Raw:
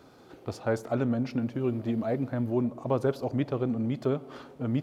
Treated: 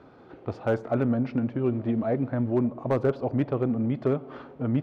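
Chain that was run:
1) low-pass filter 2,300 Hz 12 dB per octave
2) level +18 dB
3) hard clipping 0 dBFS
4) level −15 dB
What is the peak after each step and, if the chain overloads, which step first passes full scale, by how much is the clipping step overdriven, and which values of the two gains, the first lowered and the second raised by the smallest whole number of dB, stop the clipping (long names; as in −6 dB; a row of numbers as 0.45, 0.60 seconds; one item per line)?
−13.0, +5.0, 0.0, −15.0 dBFS
step 2, 5.0 dB
step 2 +13 dB, step 4 −10 dB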